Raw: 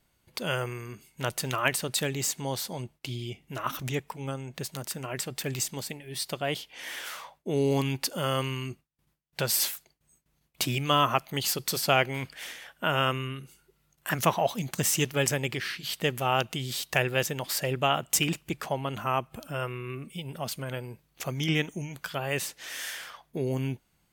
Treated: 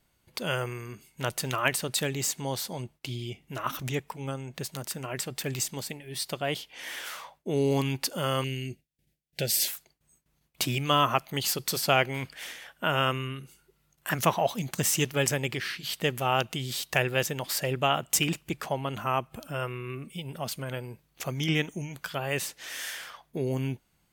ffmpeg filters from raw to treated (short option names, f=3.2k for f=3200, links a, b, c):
-filter_complex "[0:a]asettb=1/sr,asplit=3[a][b][c];[a]atrim=end=8.444[d];[b]atrim=start=8.44:end=9.68,asetpts=PTS-STARTPTS,afade=t=in:d=0.004:c=qsin,afade=t=out:st=1.236:d=0.004:c=qsin,asuperstop=centerf=1100:order=4:qfactor=0.98[e];[c]atrim=start=9.676[f];[d][e]acrossfade=d=0.004:c1=hsin:c2=qsin[g];[g][f]acrossfade=d=0.004:c1=qsin:c2=hsin"